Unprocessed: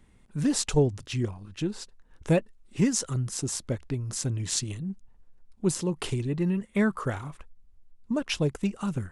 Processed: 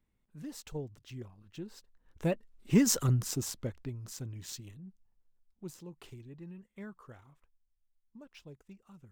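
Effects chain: Doppler pass-by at 3.00 s, 8 m/s, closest 1.9 m; decimation joined by straight lines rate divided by 2×; trim +2.5 dB

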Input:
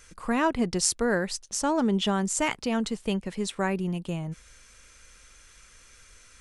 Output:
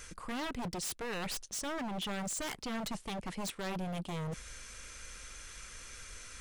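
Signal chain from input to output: reverse; compression 8:1, threshold -35 dBFS, peak gain reduction 15 dB; reverse; wavefolder -37.5 dBFS; trim +5 dB

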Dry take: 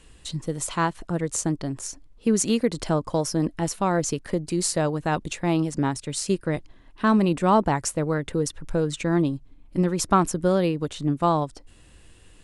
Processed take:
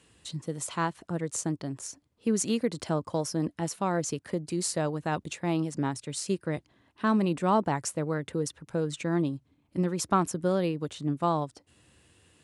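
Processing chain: high-pass 79 Hz 24 dB/octave; trim -5.5 dB

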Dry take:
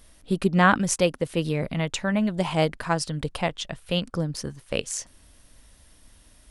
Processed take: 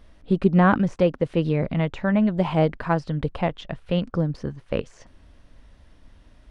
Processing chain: de-esser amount 80%; tape spacing loss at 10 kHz 26 dB; trim +4.5 dB

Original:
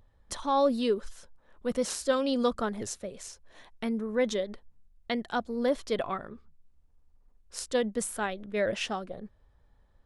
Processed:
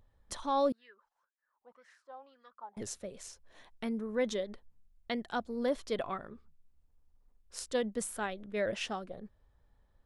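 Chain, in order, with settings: 0.72–2.77 s: wah-wah 1.9 Hz 790–1900 Hz, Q 12; trim -4.5 dB

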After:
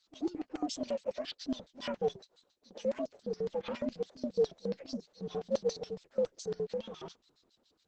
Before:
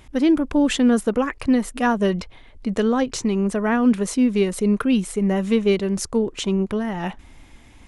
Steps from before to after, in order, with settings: frequency axis rescaled in octaves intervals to 129%; 0.88–1.46 s: tilt EQ +2.5 dB/octave; LFO band-pass square 7.2 Hz 500–4400 Hz; 2.16–2.86 s: brick-wall FIR high-pass 200 Hz; trim -5 dB; Opus 10 kbps 48 kHz

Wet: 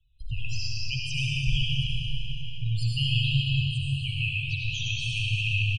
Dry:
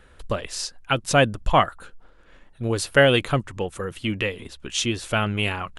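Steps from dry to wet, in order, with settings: gate -44 dBFS, range -17 dB; Chebyshev band-stop 140–2500 Hz, order 5; treble shelf 3 kHz +8.5 dB; in parallel at -1 dB: compression 6:1, threshold -38 dBFS, peak gain reduction 21 dB; on the sum: peak limiter -15 dBFS, peak gain reduction 13 dB; loudest bins only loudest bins 16; distance through air 92 m; feedback delay 325 ms, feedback 49%, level -15 dB; reverberation RT60 3.9 s, pre-delay 35 ms, DRR -5 dB; trim -2 dB

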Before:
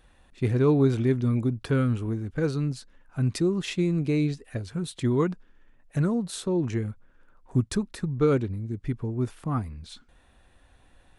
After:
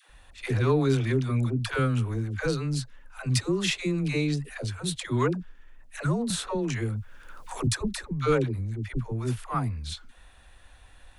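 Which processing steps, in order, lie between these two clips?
peaking EQ 250 Hz -11 dB 2.7 oct; in parallel at -6 dB: saturation -28 dBFS, distortion -14 dB; on the sum: phase dispersion lows, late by 96 ms, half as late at 490 Hz; 6.30–7.67 s: three bands compressed up and down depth 70%; trim +4 dB

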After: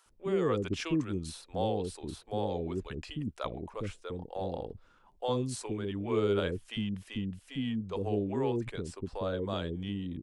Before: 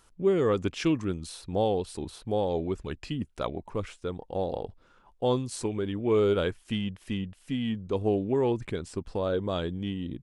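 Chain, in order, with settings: bands offset in time highs, lows 60 ms, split 470 Hz; trim -3 dB

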